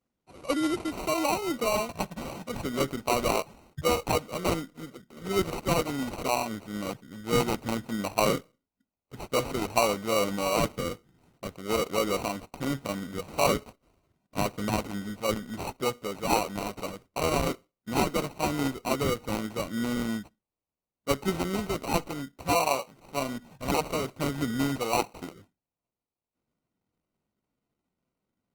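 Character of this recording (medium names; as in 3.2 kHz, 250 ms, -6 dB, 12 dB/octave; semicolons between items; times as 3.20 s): aliases and images of a low sample rate 1.7 kHz, jitter 0%; Opus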